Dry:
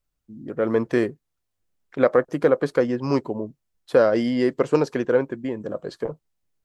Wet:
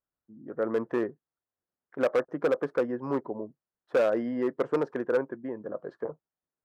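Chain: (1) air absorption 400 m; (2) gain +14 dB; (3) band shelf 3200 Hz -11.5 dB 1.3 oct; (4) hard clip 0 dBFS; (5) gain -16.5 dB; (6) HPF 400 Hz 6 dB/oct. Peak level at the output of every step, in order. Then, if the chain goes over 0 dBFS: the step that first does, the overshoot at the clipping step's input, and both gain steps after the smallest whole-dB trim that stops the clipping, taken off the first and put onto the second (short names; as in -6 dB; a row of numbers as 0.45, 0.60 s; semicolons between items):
-6.0, +8.0, +8.0, 0.0, -16.5, -13.5 dBFS; step 2, 8.0 dB; step 2 +6 dB, step 5 -8.5 dB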